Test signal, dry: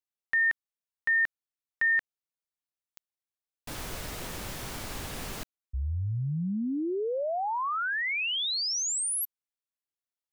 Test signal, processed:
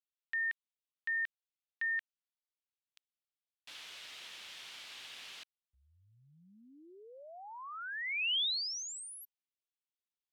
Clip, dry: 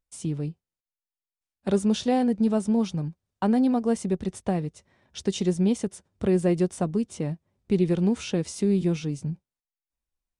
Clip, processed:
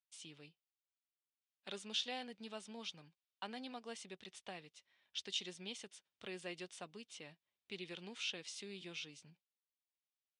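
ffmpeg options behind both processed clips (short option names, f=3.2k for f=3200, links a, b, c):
-af "bandpass=f=3.2k:t=q:w=1.9:csg=0,volume=-1.5dB"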